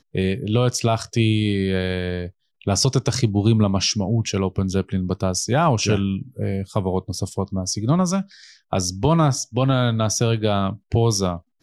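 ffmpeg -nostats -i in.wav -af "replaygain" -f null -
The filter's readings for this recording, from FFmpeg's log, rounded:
track_gain = +2.7 dB
track_peak = 0.368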